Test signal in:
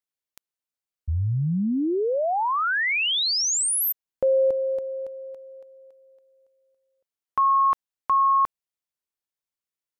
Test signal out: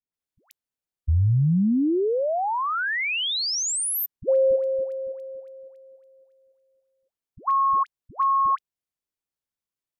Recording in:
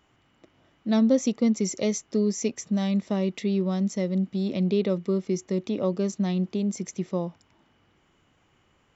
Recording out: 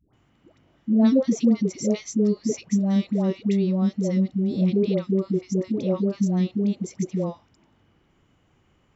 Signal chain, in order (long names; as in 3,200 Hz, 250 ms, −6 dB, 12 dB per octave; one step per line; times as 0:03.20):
low-shelf EQ 440 Hz +7.5 dB
all-pass dispersion highs, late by 136 ms, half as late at 650 Hz
level −2.5 dB